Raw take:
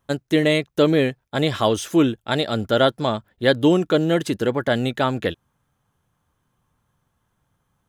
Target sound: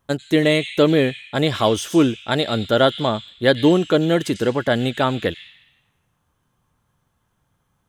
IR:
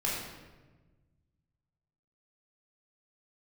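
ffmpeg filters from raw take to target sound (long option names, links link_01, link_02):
-filter_complex "[0:a]asplit=2[link_01][link_02];[link_02]asuperpass=centerf=4900:order=8:qfactor=0.68[link_03];[1:a]atrim=start_sample=2205,adelay=93[link_04];[link_03][link_04]afir=irnorm=-1:irlink=0,volume=-12dB[link_05];[link_01][link_05]amix=inputs=2:normalize=0,volume=1.5dB"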